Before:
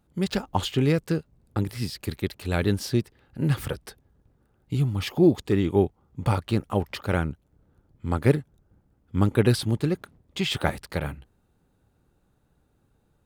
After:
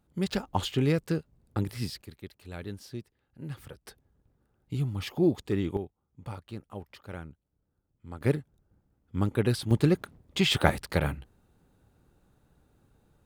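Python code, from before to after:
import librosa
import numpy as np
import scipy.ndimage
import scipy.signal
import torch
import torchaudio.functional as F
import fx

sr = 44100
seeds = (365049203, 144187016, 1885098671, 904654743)

y = fx.gain(x, sr, db=fx.steps((0.0, -3.5), (2.02, -15.5), (3.86, -6.0), (5.77, -16.0), (8.21, -6.0), (9.71, 2.0)))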